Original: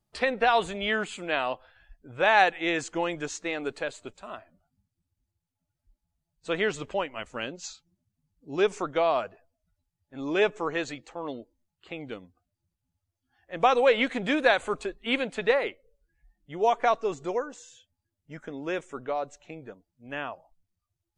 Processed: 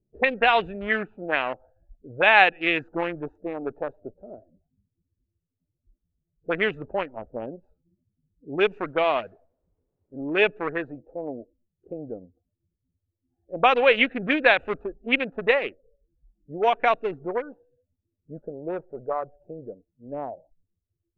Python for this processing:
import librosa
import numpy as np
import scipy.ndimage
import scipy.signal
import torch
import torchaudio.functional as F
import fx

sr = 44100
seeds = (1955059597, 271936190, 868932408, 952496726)

y = fx.wiener(x, sr, points=41)
y = fx.quant_dither(y, sr, seeds[0], bits=12, dither='triangular', at=(8.73, 10.42))
y = fx.peak_eq(y, sr, hz=270.0, db=-9.0, octaves=0.32, at=(18.39, 19.59))
y = fx.envelope_lowpass(y, sr, base_hz=420.0, top_hz=2700.0, q=2.7, full_db=-24.0, direction='up')
y = F.gain(torch.from_numpy(y), 2.0).numpy()